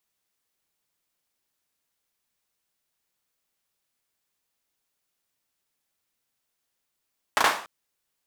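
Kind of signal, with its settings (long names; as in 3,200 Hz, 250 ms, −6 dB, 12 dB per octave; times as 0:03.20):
synth clap length 0.29 s, bursts 3, apart 36 ms, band 1,000 Hz, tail 0.43 s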